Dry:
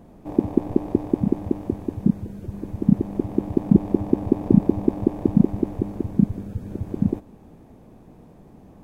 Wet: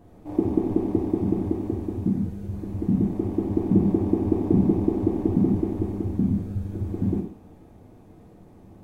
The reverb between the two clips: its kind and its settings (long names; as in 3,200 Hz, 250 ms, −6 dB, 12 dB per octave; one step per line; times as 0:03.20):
reverb whose tail is shaped and stops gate 230 ms falling, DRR −2.5 dB
level −6 dB